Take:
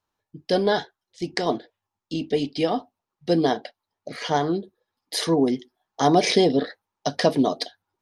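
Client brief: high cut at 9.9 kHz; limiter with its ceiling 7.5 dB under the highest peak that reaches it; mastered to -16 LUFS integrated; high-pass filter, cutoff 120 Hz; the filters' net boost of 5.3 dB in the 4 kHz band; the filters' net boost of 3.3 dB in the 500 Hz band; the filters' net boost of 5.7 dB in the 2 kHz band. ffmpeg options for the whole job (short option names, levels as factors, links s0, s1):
-af "highpass=120,lowpass=9900,equalizer=f=500:t=o:g=4,equalizer=f=2000:t=o:g=5.5,equalizer=f=4000:t=o:g=5,volume=2.24,alimiter=limit=0.75:level=0:latency=1"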